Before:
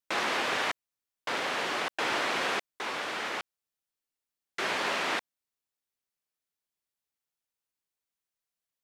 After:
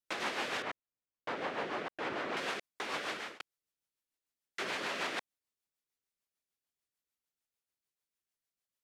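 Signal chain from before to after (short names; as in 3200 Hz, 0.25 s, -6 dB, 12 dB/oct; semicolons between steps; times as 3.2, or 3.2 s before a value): 0.62–2.37 LPF 1100 Hz 6 dB/oct; limiter -25 dBFS, peak gain reduction 7 dB; rotary speaker horn 6.7 Hz; 3–3.4 fade out equal-power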